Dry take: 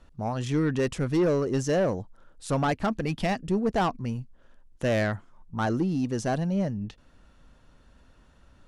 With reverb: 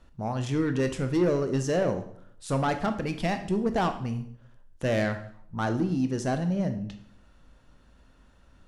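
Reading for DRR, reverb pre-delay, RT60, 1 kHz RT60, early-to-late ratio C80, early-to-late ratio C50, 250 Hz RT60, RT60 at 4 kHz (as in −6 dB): 7.5 dB, 15 ms, 0.65 s, 0.60 s, 14.5 dB, 11.0 dB, 0.70 s, 0.55 s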